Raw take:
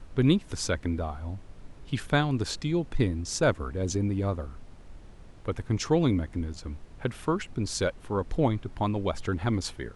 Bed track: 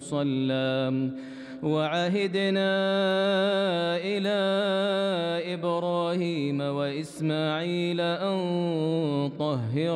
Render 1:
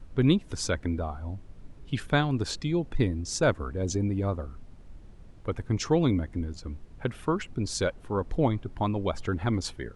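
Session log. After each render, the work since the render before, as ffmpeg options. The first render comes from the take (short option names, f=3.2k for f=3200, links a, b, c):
-af "afftdn=nr=6:nf=-49"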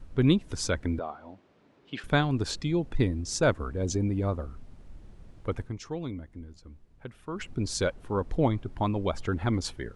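-filter_complex "[0:a]asettb=1/sr,asplit=3[a][b][c];[a]atrim=end=0.994[d];[b]atrim=start=0.99:end=2.04,asetpts=PTS-STARTPTS,afade=t=in:d=0.004:c=qsin,afade=t=out:st=1.046:d=0.004:c=qsin,highpass=320,lowpass=4.2k[e];[c]atrim=start=2.036[f];[d][e]acrossfade=d=0.004:c1=hsin:c2=qsin[g];[g][f]acrossfade=d=0.004:c1=qsin:c2=hsin,asplit=3[h][i][j];[h]atrim=end=5.78,asetpts=PTS-STARTPTS,afade=t=out:st=5.62:d=0.16:c=qua:silence=0.266073[k];[i]atrim=start=5.78:end=7.27,asetpts=PTS-STARTPTS,volume=-11.5dB[l];[j]atrim=start=7.27,asetpts=PTS-STARTPTS,afade=t=in:d=0.16:c=qua:silence=0.266073[m];[k][l][m]concat=n=3:v=0:a=1"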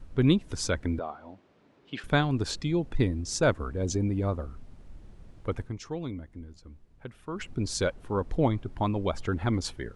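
-af anull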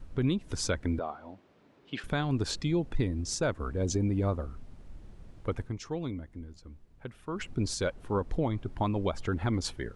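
-af "alimiter=limit=-19.5dB:level=0:latency=1:release=188"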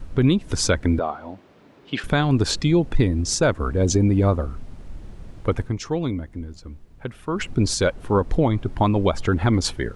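-af "volume=10.5dB"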